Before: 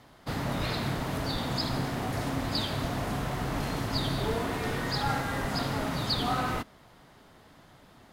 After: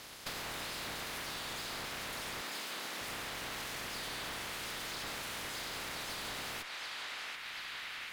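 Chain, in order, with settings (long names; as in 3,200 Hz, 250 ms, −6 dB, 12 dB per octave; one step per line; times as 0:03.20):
ceiling on every frequency bin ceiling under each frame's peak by 24 dB
tube saturation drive 35 dB, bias 0.7
0:02.41–0:03.01: high-pass filter 180 Hz 24 dB per octave
feedback echo with a band-pass in the loop 735 ms, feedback 65%, band-pass 2,200 Hz, level −4 dB
downward compressor 6 to 1, threshold −50 dBFS, peak gain reduction 15 dB
level +9.5 dB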